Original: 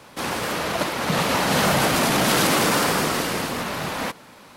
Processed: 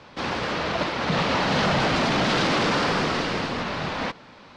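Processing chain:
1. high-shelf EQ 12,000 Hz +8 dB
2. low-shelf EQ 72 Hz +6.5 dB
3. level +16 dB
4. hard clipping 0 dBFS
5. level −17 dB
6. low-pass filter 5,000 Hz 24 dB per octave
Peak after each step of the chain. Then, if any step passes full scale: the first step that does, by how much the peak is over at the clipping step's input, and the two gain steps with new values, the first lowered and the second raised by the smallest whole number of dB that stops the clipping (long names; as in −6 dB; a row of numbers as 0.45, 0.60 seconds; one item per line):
−7.5, −7.0, +9.0, 0.0, −17.0, −15.0 dBFS
step 3, 9.0 dB
step 3 +7 dB, step 5 −8 dB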